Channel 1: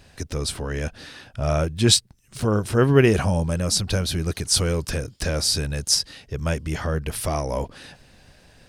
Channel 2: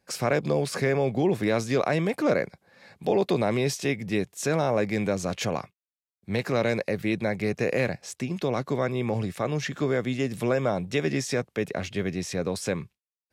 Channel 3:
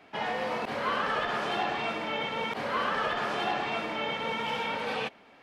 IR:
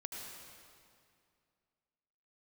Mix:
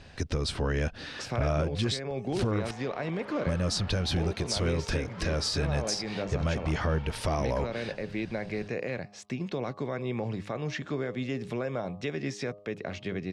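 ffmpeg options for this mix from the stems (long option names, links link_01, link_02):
-filter_complex "[0:a]acompressor=threshold=-23dB:ratio=3,volume=1.5dB,asplit=3[link_01][link_02][link_03];[link_01]atrim=end=2.71,asetpts=PTS-STARTPTS,afade=type=out:start_time=2.706:duration=0.004:curve=hsin[link_04];[link_02]atrim=start=2.71:end=3.46,asetpts=PTS-STARTPTS,volume=0[link_05];[link_03]atrim=start=3.46,asetpts=PTS-STARTPTS,afade=type=in:duration=0.004:curve=hsin[link_06];[link_04][link_05][link_06]concat=n=3:v=0:a=1[link_07];[1:a]bandreject=frequency=102.4:width_type=h:width=4,bandreject=frequency=204.8:width_type=h:width=4,bandreject=frequency=307.2:width_type=h:width=4,bandreject=frequency=409.6:width_type=h:width=4,bandreject=frequency=512:width_type=h:width=4,bandreject=frequency=614.4:width_type=h:width=4,bandreject=frequency=716.8:width_type=h:width=4,bandreject=frequency=819.2:width_type=h:width=4,bandreject=frequency=921.6:width_type=h:width=4,bandreject=frequency=1024:width_type=h:width=4,bandreject=frequency=1126.4:width_type=h:width=4,bandreject=frequency=1228.8:width_type=h:width=4,alimiter=limit=-20.5dB:level=0:latency=1:release=284,adelay=1100,volume=-2dB[link_08];[2:a]lowpass=frequency=1700:poles=1,volume=34dB,asoftclip=hard,volume=-34dB,adelay=2450,volume=-8.5dB[link_09];[link_07][link_08][link_09]amix=inputs=3:normalize=0,lowpass=5000,alimiter=limit=-18.5dB:level=0:latency=1:release=300"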